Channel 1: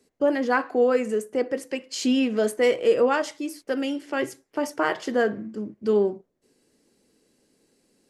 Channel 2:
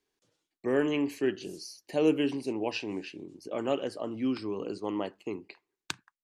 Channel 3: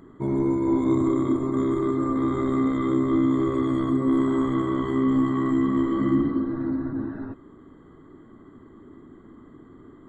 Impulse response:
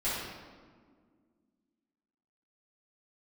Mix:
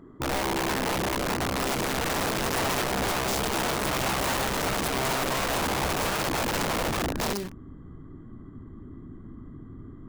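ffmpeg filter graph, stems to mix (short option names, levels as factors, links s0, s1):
-filter_complex "[0:a]acompressor=threshold=0.0631:ratio=5,aeval=exprs='sgn(val(0))*max(abs(val(0))-0.00335,0)':c=same,acrusher=bits=5:mix=0:aa=0.000001,adelay=1350,volume=0.708[s0];[1:a]flanger=delay=5.3:depth=7.1:regen=66:speed=1.5:shape=triangular,volume=0.398,asplit=2[s1][s2];[s2]volume=0.188[s3];[2:a]highshelf=f=2400:g=-9,volume=0.944[s4];[s0][s4]amix=inputs=2:normalize=0,bandreject=f=880:w=28,alimiter=limit=0.112:level=0:latency=1:release=70,volume=1[s5];[3:a]atrim=start_sample=2205[s6];[s3][s6]afir=irnorm=-1:irlink=0[s7];[s1][s5][s7]amix=inputs=3:normalize=0,asubboost=boost=5:cutoff=180,aeval=exprs='(mod(13.3*val(0)+1,2)-1)/13.3':c=same"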